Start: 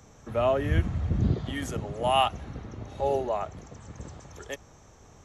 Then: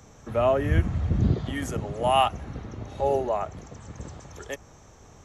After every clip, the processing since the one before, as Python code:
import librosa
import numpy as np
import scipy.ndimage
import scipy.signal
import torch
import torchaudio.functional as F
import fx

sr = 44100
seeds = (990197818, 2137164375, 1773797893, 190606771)

y = fx.dynamic_eq(x, sr, hz=3700.0, q=1.7, threshold_db=-50.0, ratio=4.0, max_db=-5)
y = y * 10.0 ** (2.5 / 20.0)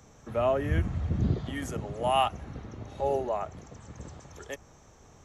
y = fx.hum_notches(x, sr, base_hz=50, count=2)
y = y * 10.0 ** (-4.0 / 20.0)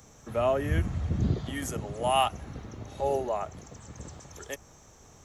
y = fx.high_shelf(x, sr, hz=5700.0, db=10.0)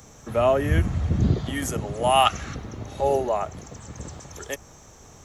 y = fx.spec_box(x, sr, start_s=2.26, length_s=0.29, low_hz=1100.0, high_hz=7800.0, gain_db=10)
y = y * 10.0 ** (6.0 / 20.0)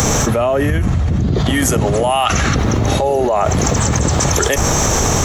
y = fx.env_flatten(x, sr, amount_pct=100)
y = y * 10.0 ** (1.0 / 20.0)